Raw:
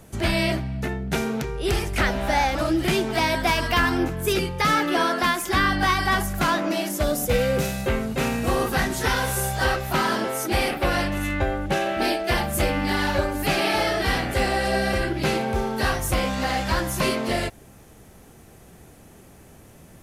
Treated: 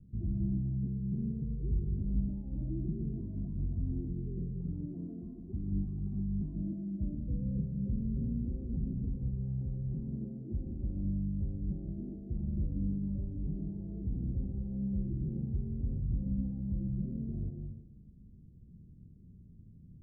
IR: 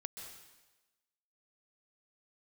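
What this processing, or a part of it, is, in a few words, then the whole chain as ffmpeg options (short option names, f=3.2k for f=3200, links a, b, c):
club heard from the street: -filter_complex "[0:a]equalizer=f=550:w=1.5:g=2.5,alimiter=limit=-15.5dB:level=0:latency=1:release=20,lowpass=f=220:w=0.5412,lowpass=f=220:w=1.3066[a];[1:a]atrim=start_sample=2205[b];[a][b]afir=irnorm=-1:irlink=0,volume=-1dB"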